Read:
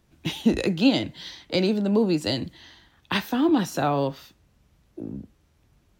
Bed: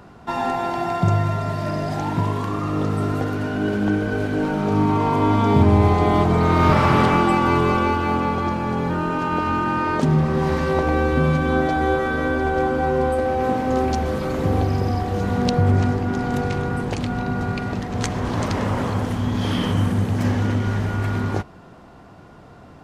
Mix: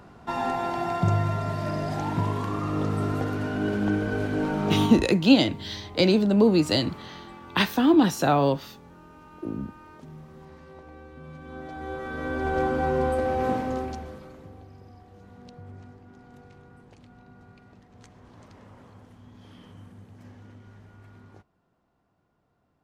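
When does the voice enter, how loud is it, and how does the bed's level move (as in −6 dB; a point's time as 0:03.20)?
4.45 s, +2.5 dB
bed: 0:04.85 −4.5 dB
0:05.12 −27 dB
0:11.18 −27 dB
0:12.56 −4.5 dB
0:13.54 −4.5 dB
0:14.56 −27.5 dB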